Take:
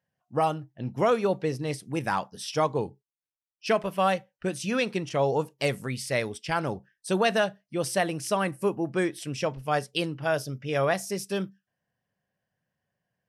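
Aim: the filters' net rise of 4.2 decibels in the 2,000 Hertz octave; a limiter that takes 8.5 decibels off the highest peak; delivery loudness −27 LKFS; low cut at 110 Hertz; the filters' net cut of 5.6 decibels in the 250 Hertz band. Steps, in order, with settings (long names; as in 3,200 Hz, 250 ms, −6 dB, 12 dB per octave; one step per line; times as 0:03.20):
high-pass filter 110 Hz
parametric band 250 Hz −8.5 dB
parametric band 2,000 Hz +5.5 dB
level +4 dB
brickwall limiter −13 dBFS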